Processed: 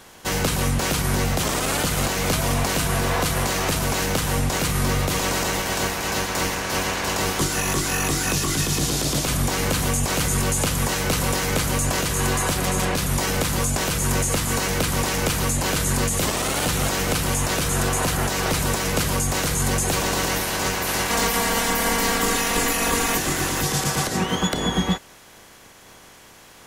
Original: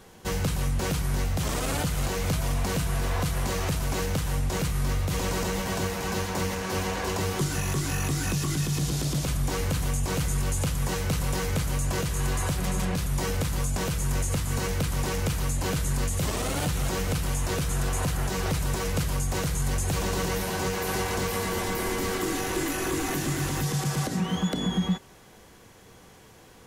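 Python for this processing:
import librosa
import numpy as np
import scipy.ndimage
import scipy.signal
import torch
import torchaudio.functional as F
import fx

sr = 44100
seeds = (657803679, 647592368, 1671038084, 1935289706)

y = fx.spec_clip(x, sr, under_db=13)
y = fx.comb(y, sr, ms=4.3, depth=0.85, at=(21.09, 23.18))
y = y * 10.0 ** (4.5 / 20.0)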